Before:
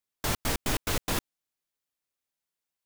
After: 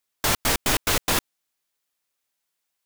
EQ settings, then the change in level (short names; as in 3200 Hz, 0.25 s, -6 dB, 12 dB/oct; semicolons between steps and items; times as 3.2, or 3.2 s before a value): low shelf 420 Hz -7 dB; +9.0 dB